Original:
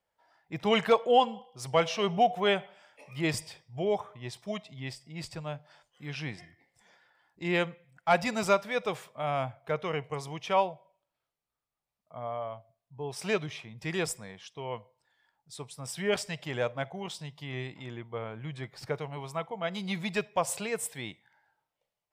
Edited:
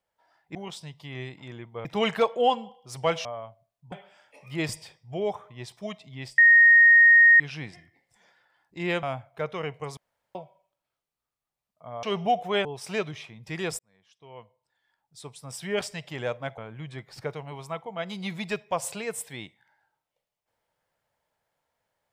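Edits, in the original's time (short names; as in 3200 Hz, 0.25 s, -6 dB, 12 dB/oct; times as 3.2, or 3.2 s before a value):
1.95–2.57 swap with 12.33–13
5.03–6.05 bleep 1860 Hz -11.5 dBFS
7.68–9.33 cut
10.27–10.65 room tone
14.14–15.68 fade in
16.93–18.23 move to 0.55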